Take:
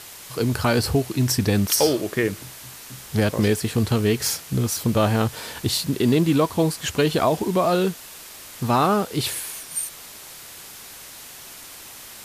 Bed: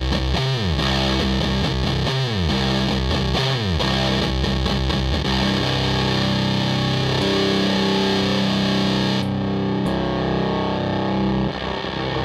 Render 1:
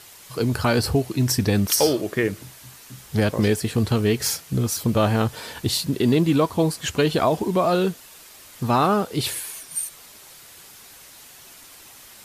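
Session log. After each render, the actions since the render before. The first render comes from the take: noise reduction 6 dB, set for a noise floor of -41 dBFS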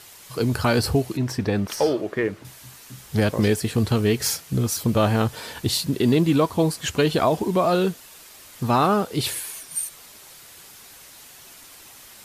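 1.17–2.45 s: overdrive pedal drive 9 dB, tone 1 kHz, clips at -6.5 dBFS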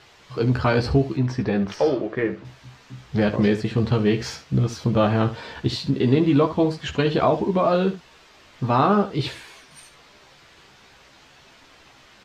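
distance through air 180 m; on a send: early reflections 15 ms -5.5 dB, 72 ms -12.5 dB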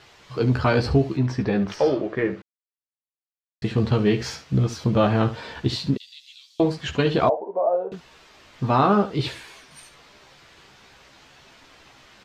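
2.42–3.62 s: mute; 5.97–6.60 s: inverse Chebyshev high-pass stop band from 870 Hz, stop band 70 dB; 7.29–7.92 s: Butterworth band-pass 630 Hz, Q 1.7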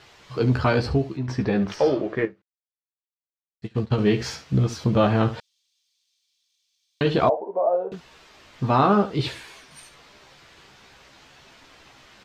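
0.62–1.28 s: fade out, to -8 dB; 2.25–3.98 s: upward expansion 2.5:1, over -32 dBFS; 5.40–7.01 s: room tone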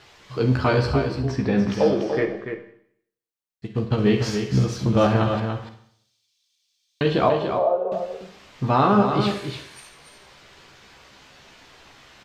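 delay 290 ms -7 dB; Schroeder reverb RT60 0.66 s, combs from 31 ms, DRR 7.5 dB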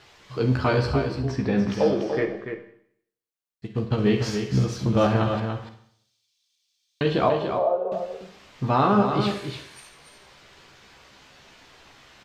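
trim -2 dB

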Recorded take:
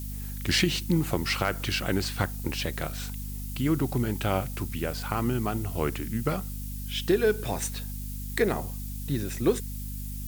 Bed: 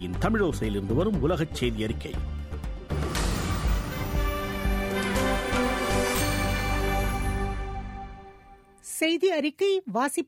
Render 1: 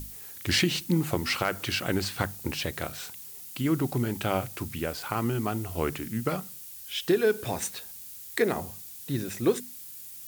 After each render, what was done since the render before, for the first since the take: hum notches 50/100/150/200/250 Hz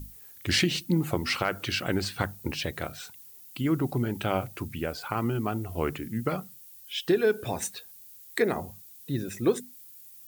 noise reduction 10 dB, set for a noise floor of -44 dBFS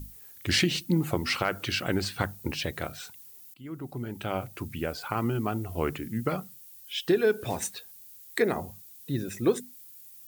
3.54–4.82 s: fade in, from -21 dB; 7.41–7.91 s: block-companded coder 5-bit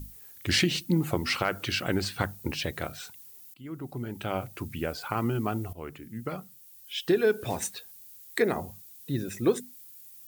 5.73–7.18 s: fade in, from -13.5 dB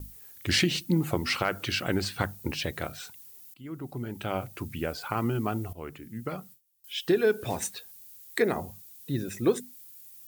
gate with hold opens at -40 dBFS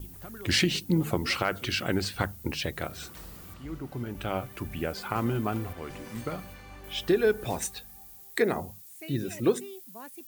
add bed -20 dB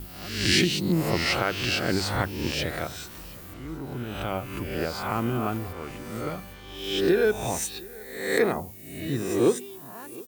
reverse spectral sustain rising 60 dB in 0.81 s; delay 718 ms -22.5 dB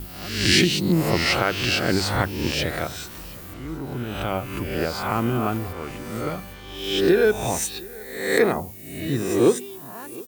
trim +4 dB

